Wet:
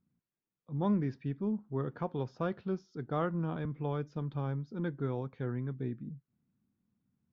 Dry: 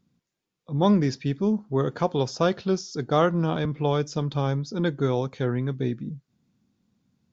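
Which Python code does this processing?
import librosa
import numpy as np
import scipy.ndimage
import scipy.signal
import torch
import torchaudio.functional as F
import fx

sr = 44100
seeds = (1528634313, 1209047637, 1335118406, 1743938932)

y = scipy.signal.sosfilt(scipy.signal.butter(2, 1800.0, 'lowpass', fs=sr, output='sos'), x)
y = fx.peak_eq(y, sr, hz=600.0, db=-5.0, octaves=1.6)
y = y * 10.0 ** (-8.5 / 20.0)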